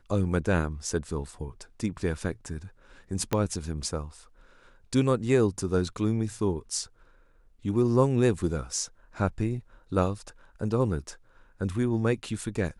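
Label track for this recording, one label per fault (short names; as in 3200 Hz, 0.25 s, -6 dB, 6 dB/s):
3.330000	3.330000	pop -11 dBFS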